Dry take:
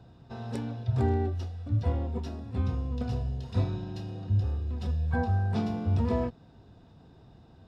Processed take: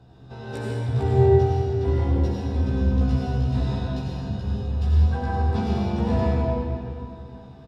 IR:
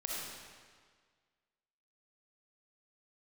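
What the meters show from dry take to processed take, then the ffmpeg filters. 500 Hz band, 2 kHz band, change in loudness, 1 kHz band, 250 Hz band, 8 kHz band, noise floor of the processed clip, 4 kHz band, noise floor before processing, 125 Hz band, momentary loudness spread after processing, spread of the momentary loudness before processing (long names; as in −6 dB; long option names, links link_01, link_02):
+11.5 dB, +5.5 dB, +7.0 dB, +8.0 dB, +7.0 dB, can't be measured, −45 dBFS, +7.5 dB, −56 dBFS, +6.5 dB, 13 LU, 9 LU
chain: -filter_complex "[0:a]asplit=2[link_01][link_02];[link_02]adelay=15,volume=-2dB[link_03];[link_01][link_03]amix=inputs=2:normalize=0[link_04];[1:a]atrim=start_sample=2205,asetrate=27783,aresample=44100[link_05];[link_04][link_05]afir=irnorm=-1:irlink=0"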